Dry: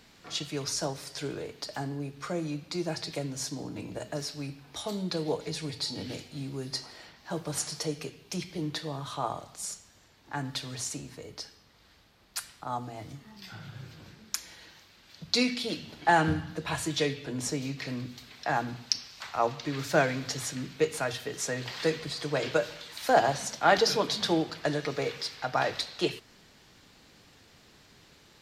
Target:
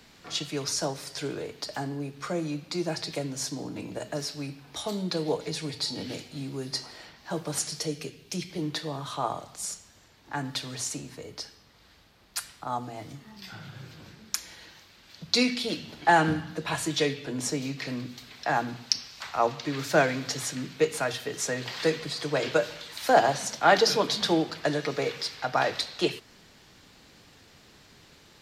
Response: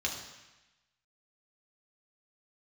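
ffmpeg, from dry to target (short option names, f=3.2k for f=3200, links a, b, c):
-filter_complex "[0:a]asettb=1/sr,asplit=3[a][b][c];[a]atrim=end=7.594[d];[b]atrim=start=7.59:end=8.5,asetpts=PTS-STARTPTS,afade=t=in:d=0.004:c=qsin,afade=t=out:st=0.906:d=0.004:c=qsin,equalizer=f=960:t=o:w=1.4:g=-6.5[e];[c]atrim=start=8.496[f];[d][e]acrossfade=d=0.004:c1=hsin:c2=qsin[g];[g][f]acrossfade=d=0.004:c1=qsin:c2=hsin,acrossover=split=120|890[h][i][j];[h]acompressor=threshold=-57dB:ratio=6[k];[k][i][j]amix=inputs=3:normalize=0,volume=2.5dB"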